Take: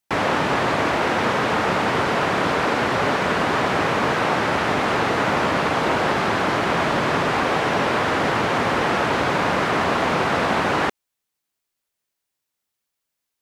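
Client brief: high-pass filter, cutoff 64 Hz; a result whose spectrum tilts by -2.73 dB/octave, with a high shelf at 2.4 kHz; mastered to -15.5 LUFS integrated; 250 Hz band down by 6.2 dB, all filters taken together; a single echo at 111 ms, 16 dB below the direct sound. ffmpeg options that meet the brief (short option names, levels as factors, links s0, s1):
-af "highpass=64,equalizer=f=250:t=o:g=-8.5,highshelf=f=2400:g=-5.5,aecho=1:1:111:0.158,volume=2.24"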